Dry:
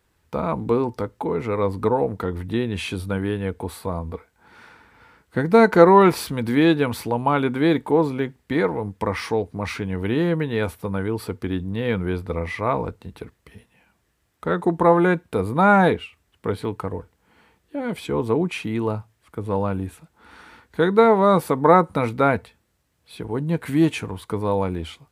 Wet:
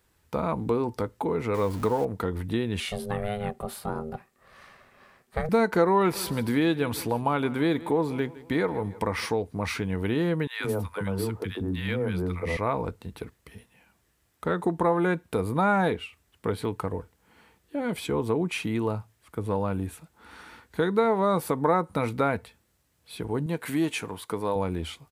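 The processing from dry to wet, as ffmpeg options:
-filter_complex "[0:a]asettb=1/sr,asplit=3[s0][s1][s2];[s0]atrim=end=1.544[s3];[s1]atrim=start=1.54:end=2.05,asetpts=PTS-STARTPTS,afade=t=in:d=0.004:c=qsin,afade=t=out:st=0.506:d=0.004:c=qsin,aeval=exprs='val(0)+0.5*0.02*sgn(val(0))':c=same[s4];[s2]atrim=start=2.046[s5];[s3][s4]acrossfade=d=0.004:c1=hsin:c2=qsin[s6];[s6][s5]acrossfade=d=0.004:c1=qsin:c2=hsin,asettb=1/sr,asplit=3[s7][s8][s9];[s7]atrim=end=2.804[s10];[s8]atrim=start=2.8:end=5.49,asetpts=PTS-STARTPTS,afade=t=in:d=0.004:c=qsin,afade=t=out:st=2.686:d=0.004:c=qsin,aeval=exprs='val(0)*sin(2*PI*310*n/s)':c=same[s11];[s9]atrim=start=5.486[s12];[s10][s11]acrossfade=d=0.004:c1=hsin:c2=qsin[s13];[s13][s12]acrossfade=d=0.004:c1=qsin:c2=hsin,asplit=3[s14][s15][s16];[s14]afade=t=out:st=6.14:d=0.02[s17];[s15]aecho=1:1:161|322|483:0.0944|0.0415|0.0183,afade=t=in:st=6.14:d=0.02,afade=t=out:st=9.25:d=0.02[s18];[s16]afade=t=in:st=9.25:d=0.02[s19];[s17][s18][s19]amix=inputs=3:normalize=0,asettb=1/sr,asplit=3[s20][s21][s22];[s20]atrim=end=10.474[s23];[s21]atrim=start=10.47:end=12.57,asetpts=PTS-STARTPTS,afade=t=in:d=0.004:c=qsin,afade=t=out:st=2.096:d=0.004:c=qsin,acrossover=split=290|1100[s24][s25][s26];[s25]adelay=130[s27];[s24]adelay=170[s28];[s28][s27][s26]amix=inputs=3:normalize=0,atrim=end_sample=92610[s29];[s22]atrim=start=12.566[s30];[s23][s29]acrossfade=d=0.004:c1=hsin:c2=qsin[s31];[s31][s30]acrossfade=d=0.004:c1=qsin:c2=hsin,asettb=1/sr,asplit=3[s32][s33][s34];[s32]atrim=end=23.464[s35];[s33]atrim=start=23.46:end=24.56,asetpts=PTS-STARTPTS,afade=t=in:d=0.004:c=qsin,afade=t=out:st=1.096:d=0.004:c=qsin,highpass=f=290:p=1[s36];[s34]atrim=start=24.556[s37];[s35][s36]acrossfade=d=0.004:c1=hsin:c2=qsin[s38];[s38][s37]acrossfade=d=0.004:c1=qsin:c2=hsin,highshelf=f=5800:g=5.5,acompressor=threshold=0.0708:ratio=2,volume=0.841"

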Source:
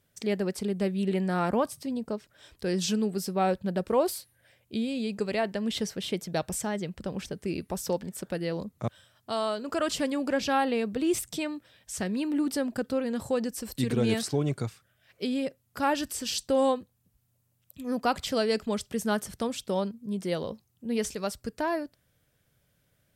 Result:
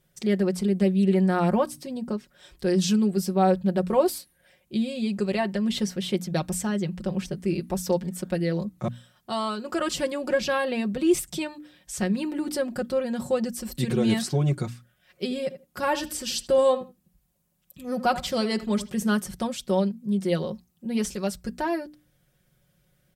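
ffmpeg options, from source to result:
-filter_complex "[0:a]asplit=3[s0][s1][s2];[s0]afade=t=out:st=15.25:d=0.02[s3];[s1]asplit=2[s4][s5];[s5]adelay=80,lowpass=f=2200:p=1,volume=0.224,asplit=2[s6][s7];[s7]adelay=80,lowpass=f=2200:p=1,volume=0.16[s8];[s4][s6][s8]amix=inputs=3:normalize=0,afade=t=in:st=15.25:d=0.02,afade=t=out:st=19.11:d=0.02[s9];[s2]afade=t=in:st=19.11:d=0.02[s10];[s3][s9][s10]amix=inputs=3:normalize=0,lowshelf=f=220:g=6.5,bandreject=f=60:t=h:w=6,bandreject=f=120:t=h:w=6,bandreject=f=180:t=h:w=6,bandreject=f=240:t=h:w=6,bandreject=f=300:t=h:w=6,aecho=1:1:5.5:0.74"

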